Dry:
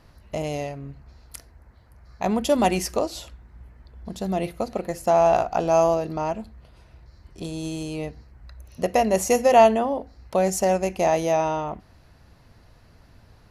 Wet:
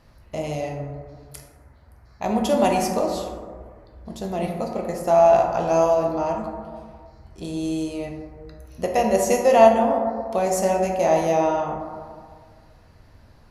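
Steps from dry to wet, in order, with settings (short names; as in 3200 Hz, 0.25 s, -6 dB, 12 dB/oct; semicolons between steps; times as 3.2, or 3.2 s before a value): plate-style reverb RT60 1.8 s, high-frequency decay 0.3×, DRR 0.5 dB; gain -2 dB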